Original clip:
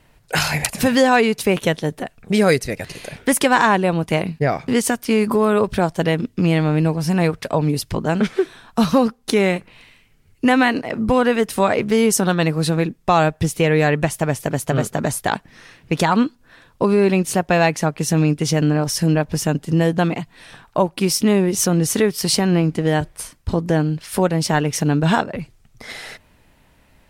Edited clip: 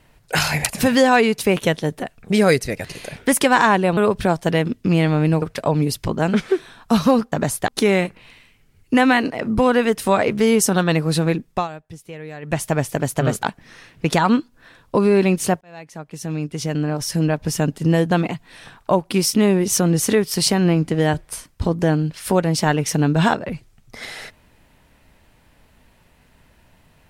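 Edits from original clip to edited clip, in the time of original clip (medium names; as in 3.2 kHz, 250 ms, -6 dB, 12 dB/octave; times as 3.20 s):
3.97–5.50 s: delete
6.95–7.29 s: delete
13.02–14.10 s: dip -18.5 dB, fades 0.17 s
14.94–15.30 s: move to 9.19 s
17.48–19.59 s: fade in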